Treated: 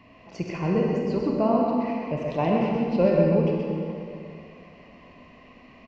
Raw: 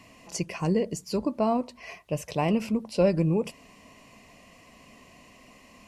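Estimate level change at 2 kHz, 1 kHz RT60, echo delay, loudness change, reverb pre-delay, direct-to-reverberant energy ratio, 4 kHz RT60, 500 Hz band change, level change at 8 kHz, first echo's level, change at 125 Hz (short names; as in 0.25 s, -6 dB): +2.0 dB, 2.5 s, 0.128 s, +3.5 dB, 30 ms, -2.5 dB, 2.1 s, +4.5 dB, under -15 dB, -4.5 dB, +3.0 dB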